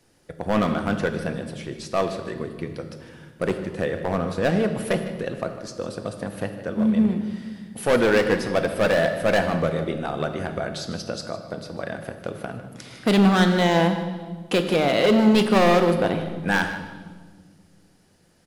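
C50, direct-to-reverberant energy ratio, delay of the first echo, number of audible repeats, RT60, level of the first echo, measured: 8.0 dB, 6.5 dB, 0.153 s, 1, 1.5 s, -14.5 dB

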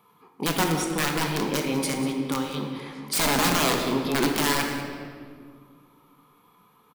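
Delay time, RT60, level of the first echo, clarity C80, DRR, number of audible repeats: 0.191 s, 1.9 s, -14.5 dB, 5.0 dB, 1.5 dB, 1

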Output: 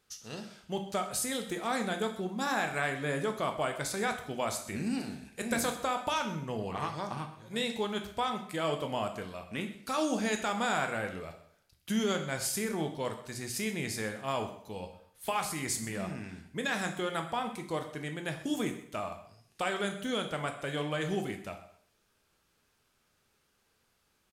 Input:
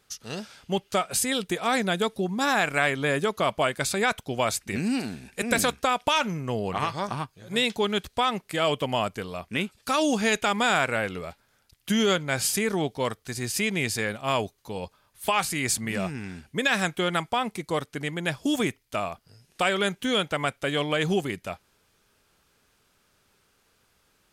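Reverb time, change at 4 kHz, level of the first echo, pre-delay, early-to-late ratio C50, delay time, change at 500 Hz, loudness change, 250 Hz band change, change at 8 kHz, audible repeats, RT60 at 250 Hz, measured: 0.60 s, -9.5 dB, -16.5 dB, 5 ms, 9.0 dB, 0.128 s, -7.0 dB, -7.5 dB, -6.5 dB, -7.0 dB, 2, 0.60 s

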